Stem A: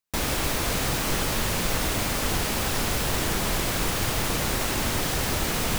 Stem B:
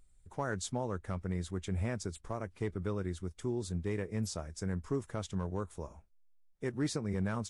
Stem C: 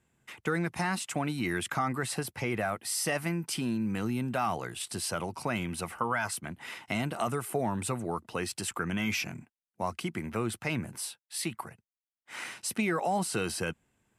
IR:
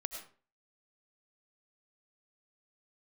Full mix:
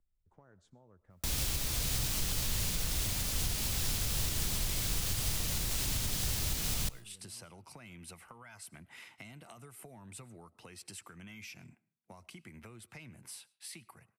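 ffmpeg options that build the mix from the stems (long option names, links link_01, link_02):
-filter_complex "[0:a]alimiter=limit=-19dB:level=0:latency=1:release=269,adelay=1100,volume=-2dB,asplit=2[link_01][link_02];[link_02]volume=-15dB[link_03];[1:a]lowpass=frequency=1600:poles=1,acompressor=threshold=-41dB:ratio=6,volume=-17.5dB,asplit=2[link_04][link_05];[link_05]volume=-10dB[link_06];[2:a]acompressor=threshold=-35dB:ratio=6,equalizer=frequency=2200:width_type=o:width=0.44:gain=4.5,adelay=2300,volume=-9dB,asplit=2[link_07][link_08];[link_08]volume=-16dB[link_09];[3:a]atrim=start_sample=2205[link_10];[link_03][link_06][link_09]amix=inputs=3:normalize=0[link_11];[link_11][link_10]afir=irnorm=-1:irlink=0[link_12];[link_01][link_04][link_07][link_12]amix=inputs=4:normalize=0,acrossover=split=150|3000[link_13][link_14][link_15];[link_14]acompressor=threshold=-57dB:ratio=2[link_16];[link_13][link_16][link_15]amix=inputs=3:normalize=0"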